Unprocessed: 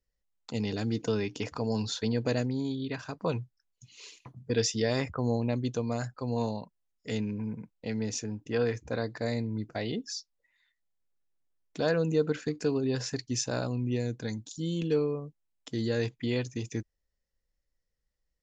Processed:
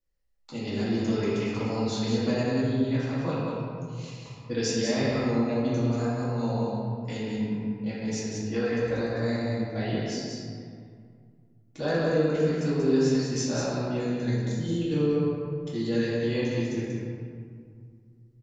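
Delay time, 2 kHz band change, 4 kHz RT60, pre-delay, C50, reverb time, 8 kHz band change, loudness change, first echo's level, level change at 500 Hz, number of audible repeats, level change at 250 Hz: 187 ms, +3.5 dB, 1.1 s, 3 ms, −3.5 dB, 2.2 s, +0.5 dB, +4.0 dB, −3.5 dB, +3.5 dB, 1, +5.5 dB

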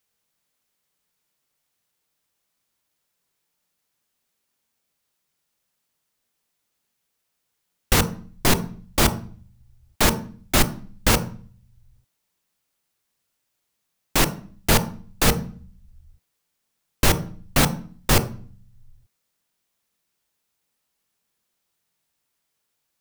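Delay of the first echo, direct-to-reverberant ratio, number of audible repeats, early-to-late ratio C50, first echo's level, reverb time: no echo audible, 10.5 dB, no echo audible, 15.0 dB, no echo audible, 0.45 s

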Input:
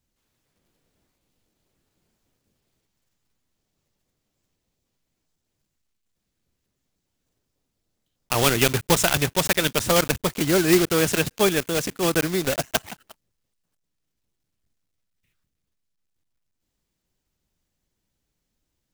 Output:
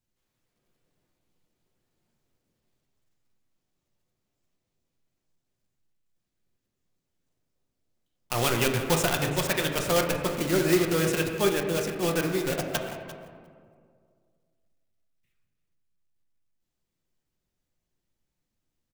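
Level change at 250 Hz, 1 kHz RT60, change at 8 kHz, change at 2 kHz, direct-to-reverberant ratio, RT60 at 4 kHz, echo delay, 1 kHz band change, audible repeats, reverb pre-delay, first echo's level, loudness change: −4.0 dB, 1.9 s, −7.0 dB, −5.0 dB, 1.5 dB, 1.0 s, 345 ms, −4.0 dB, 1, 6 ms, −16.5 dB, −4.5 dB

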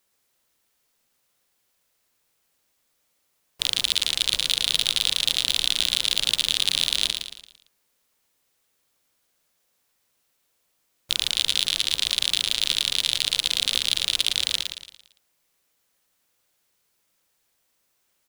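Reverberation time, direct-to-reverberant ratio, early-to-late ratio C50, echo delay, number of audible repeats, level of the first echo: no reverb audible, no reverb audible, no reverb audible, 113 ms, 4, −6.5 dB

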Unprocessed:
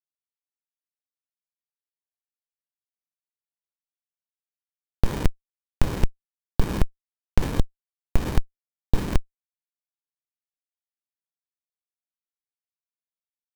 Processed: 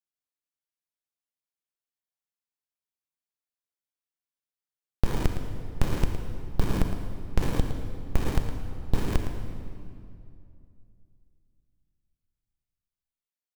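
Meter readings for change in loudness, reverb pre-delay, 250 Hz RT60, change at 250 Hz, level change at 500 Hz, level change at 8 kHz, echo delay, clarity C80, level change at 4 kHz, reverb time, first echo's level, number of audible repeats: −2.5 dB, 31 ms, 3.0 s, −1.0 dB, −1.0 dB, −2.0 dB, 112 ms, 5.5 dB, −2.0 dB, 2.5 s, −10.0 dB, 1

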